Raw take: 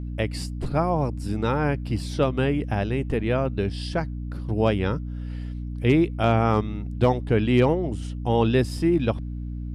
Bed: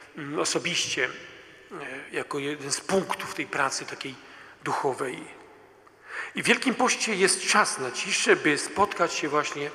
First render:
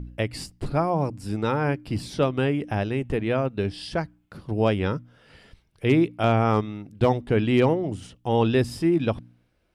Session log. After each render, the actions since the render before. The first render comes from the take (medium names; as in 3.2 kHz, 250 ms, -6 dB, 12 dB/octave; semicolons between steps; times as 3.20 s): de-hum 60 Hz, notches 5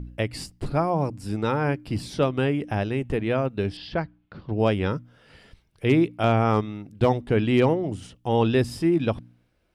3.77–4.60 s: low-pass 4.3 kHz 24 dB/octave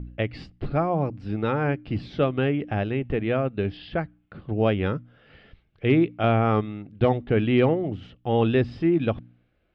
low-pass 3.5 kHz 24 dB/octave; band-stop 960 Hz, Q 6.5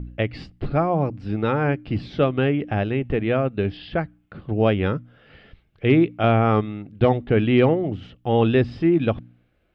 trim +3 dB